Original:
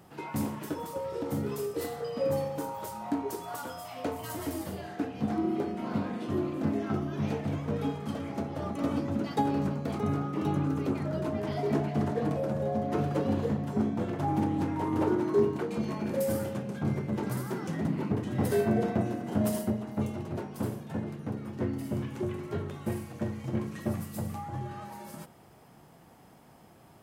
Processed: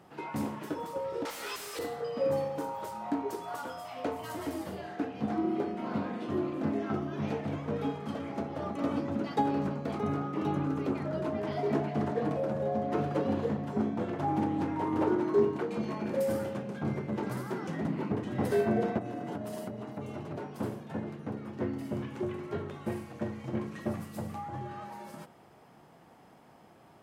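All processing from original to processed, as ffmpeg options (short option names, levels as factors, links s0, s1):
-filter_complex "[0:a]asettb=1/sr,asplit=3[s0][s1][s2];[s0]atrim=end=1.254[s3];[s1]atrim=start=1.25:end=1.79,asetpts=PTS-STARTPTS,afade=t=in:d=0.004:c=qsin,afade=t=out:st=0.536:d=0.004:c=qsin,highpass=310,aderivative,asplit=2[s4][s5];[s5]highpass=f=720:p=1,volume=63.1,asoftclip=type=tanh:threshold=0.0531[s6];[s4][s6]amix=inputs=2:normalize=0,lowpass=f=4900:p=1,volume=0.501[s7];[s2]atrim=start=1.786[s8];[s3][s7]acrossfade=d=0.004:c1=hsin:c2=qsin[s9];[s9][s8]acrossfade=d=0.004:c1=qsin:c2=hsin,asettb=1/sr,asplit=3[s10][s11][s12];[s10]atrim=end=18.984[s13];[s11]atrim=start=18.98:end=20.56,asetpts=PTS-STARTPTS,afade=t=in:d=0.004:c=qsin,afade=t=out:st=1.576:d=0.004:c=qsin,acompressor=threshold=0.0282:ratio=10:attack=3.2:release=140:knee=1:detection=peak,aecho=1:1:6.9:0.37,atrim=end_sample=69678[s14];[s12]atrim=start=20.556[s15];[s13][s14]acrossfade=d=0.004:c1=hsin:c2=qsin[s16];[s16][s15]acrossfade=d=0.004:c1=qsin:c2=hsin,lowpass=f=3500:p=1,lowshelf=f=150:g=-10,volume=1.12"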